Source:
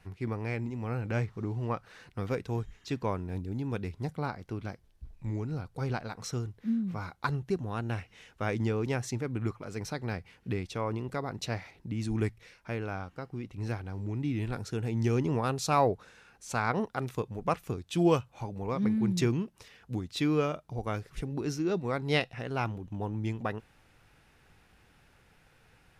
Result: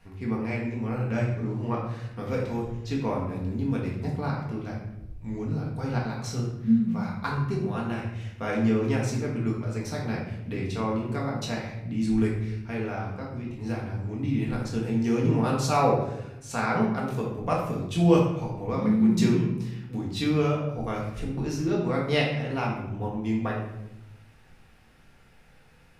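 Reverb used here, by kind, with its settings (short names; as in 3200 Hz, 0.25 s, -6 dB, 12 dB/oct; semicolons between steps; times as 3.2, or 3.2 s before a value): shoebox room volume 280 m³, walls mixed, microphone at 1.7 m; gain -1.5 dB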